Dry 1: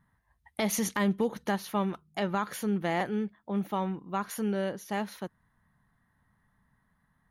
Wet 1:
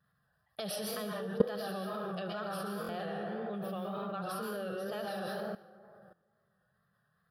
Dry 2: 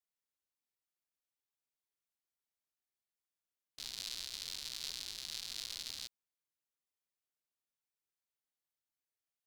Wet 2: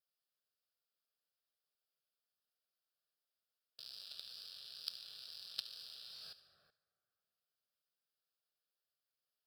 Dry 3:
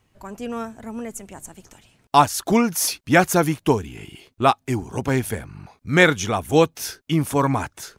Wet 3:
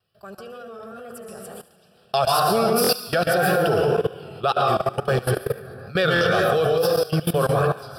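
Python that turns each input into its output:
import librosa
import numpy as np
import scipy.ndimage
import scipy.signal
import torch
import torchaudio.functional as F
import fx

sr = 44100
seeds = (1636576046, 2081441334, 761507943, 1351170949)

p1 = fx.fold_sine(x, sr, drive_db=6, ceiling_db=-1.0)
p2 = x + (p1 * 10.0 ** (-11.0 / 20.0))
p3 = fx.rev_plate(p2, sr, seeds[0], rt60_s=1.9, hf_ratio=0.4, predelay_ms=105, drr_db=-0.5)
p4 = fx.wow_flutter(p3, sr, seeds[1], rate_hz=2.1, depth_cents=87.0)
p5 = fx.dynamic_eq(p4, sr, hz=550.0, q=1.3, threshold_db=-21.0, ratio=4.0, max_db=3)
p6 = scipy.signal.sosfilt(scipy.signal.butter(2, 130.0, 'highpass', fs=sr, output='sos'), p5)
p7 = fx.fixed_phaser(p6, sr, hz=1400.0, stages=8)
p8 = fx.level_steps(p7, sr, step_db=19)
p9 = fx.peak_eq(p8, sr, hz=5000.0, db=12.0, octaves=0.27)
p10 = fx.echo_wet_highpass(p9, sr, ms=73, feedback_pct=55, hz=1600.0, wet_db=-15.5)
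y = fx.buffer_glitch(p10, sr, at_s=(2.82, 6.14), block=1024, repeats=2)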